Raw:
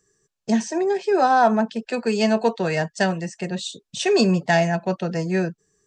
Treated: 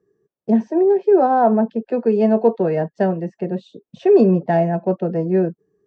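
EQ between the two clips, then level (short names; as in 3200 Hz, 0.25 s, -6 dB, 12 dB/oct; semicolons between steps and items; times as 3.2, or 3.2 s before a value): band-pass 430 Hz, Q 1; air absorption 100 m; low shelf 460 Hz +7.5 dB; +3.0 dB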